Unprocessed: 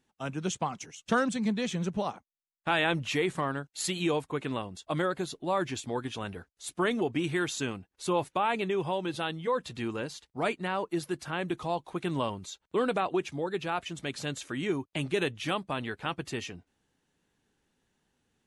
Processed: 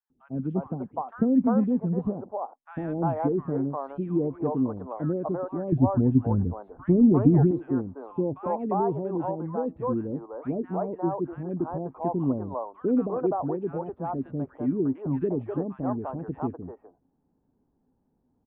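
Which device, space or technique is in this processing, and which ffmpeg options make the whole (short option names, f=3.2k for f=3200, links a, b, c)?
under water: -filter_complex "[0:a]asettb=1/sr,asplit=3[a][b][c];[a]atrim=end=5.624[d];[b]atrim=start=5.62:end=7.41,asetpts=PTS-STARTPTS,afade=t=in:d=0.004:c=qsin,afade=t=out:st=1.786:d=0.004:c=qsin,bass=f=250:g=14,treble=f=4k:g=-3[e];[c]atrim=start=7.406[f];[d][e]acrossfade=d=0.004:c1=hsin:c2=qsin[g];[g][f]acrossfade=d=0.004:c1=qsin:c2=hsin,lowpass=f=940:w=0.5412,lowpass=f=940:w=1.3066,equalizer=f=260:t=o:w=0.24:g=8,acrossover=split=490|1500[h][i][j];[h]adelay=100[k];[i]adelay=350[l];[k][l][j]amix=inputs=3:normalize=0,volume=5dB"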